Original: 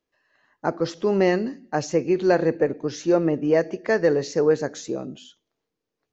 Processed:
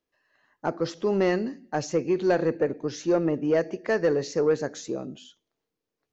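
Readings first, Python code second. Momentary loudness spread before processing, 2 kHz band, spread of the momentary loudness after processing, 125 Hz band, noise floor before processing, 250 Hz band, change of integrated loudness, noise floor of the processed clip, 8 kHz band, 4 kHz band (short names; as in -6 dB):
9 LU, -4.0 dB, 9 LU, -3.5 dB, -83 dBFS, -3.5 dB, -3.5 dB, -85 dBFS, n/a, -3.0 dB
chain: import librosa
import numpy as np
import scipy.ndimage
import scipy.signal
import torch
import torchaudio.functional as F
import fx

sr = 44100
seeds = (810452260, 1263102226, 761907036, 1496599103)

y = 10.0 ** (-10.0 / 20.0) * np.tanh(x / 10.0 ** (-10.0 / 20.0))
y = y * librosa.db_to_amplitude(-2.5)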